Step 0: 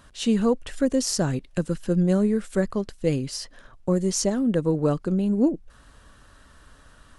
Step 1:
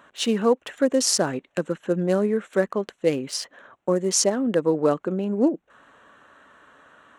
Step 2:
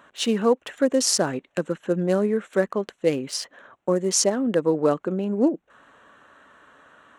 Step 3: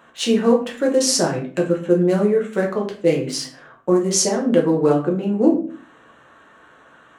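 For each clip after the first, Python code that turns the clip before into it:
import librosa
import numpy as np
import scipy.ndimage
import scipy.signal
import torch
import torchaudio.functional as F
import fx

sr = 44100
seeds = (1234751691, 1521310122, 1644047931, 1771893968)

y1 = fx.wiener(x, sr, points=9)
y1 = scipy.signal.sosfilt(scipy.signal.bessel(2, 410.0, 'highpass', norm='mag', fs=sr, output='sos'), y1)
y1 = y1 * 10.0 ** (6.0 / 20.0)
y2 = y1
y3 = fx.room_shoebox(y2, sr, seeds[0], volume_m3=36.0, walls='mixed', distance_m=0.68)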